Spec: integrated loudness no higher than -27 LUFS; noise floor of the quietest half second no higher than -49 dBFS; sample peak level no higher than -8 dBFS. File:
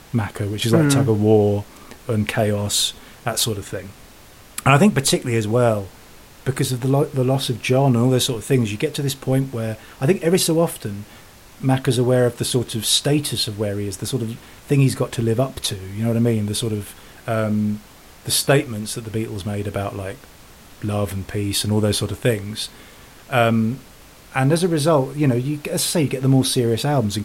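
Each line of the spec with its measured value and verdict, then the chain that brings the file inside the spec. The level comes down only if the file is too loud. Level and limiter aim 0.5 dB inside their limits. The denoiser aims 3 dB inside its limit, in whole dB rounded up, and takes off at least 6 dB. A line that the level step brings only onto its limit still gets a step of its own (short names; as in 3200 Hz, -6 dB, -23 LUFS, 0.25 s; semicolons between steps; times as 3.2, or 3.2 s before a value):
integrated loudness -20.0 LUFS: fail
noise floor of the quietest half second -45 dBFS: fail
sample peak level -2.5 dBFS: fail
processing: gain -7.5 dB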